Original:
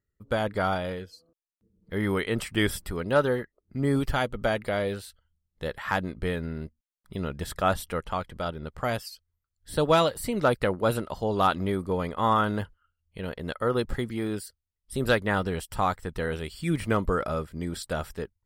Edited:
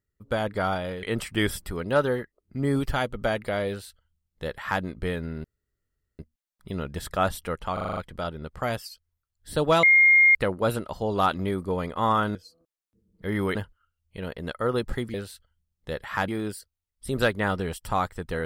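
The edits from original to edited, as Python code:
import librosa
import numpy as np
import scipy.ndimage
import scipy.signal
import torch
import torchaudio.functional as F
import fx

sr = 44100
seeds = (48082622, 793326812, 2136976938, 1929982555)

y = fx.edit(x, sr, fx.move(start_s=1.03, length_s=1.2, to_s=12.56),
    fx.duplicate(start_s=4.88, length_s=1.14, to_s=14.15),
    fx.insert_room_tone(at_s=6.64, length_s=0.75),
    fx.stutter(start_s=8.18, slice_s=0.04, count=7),
    fx.bleep(start_s=10.04, length_s=0.52, hz=2130.0, db=-13.0), tone=tone)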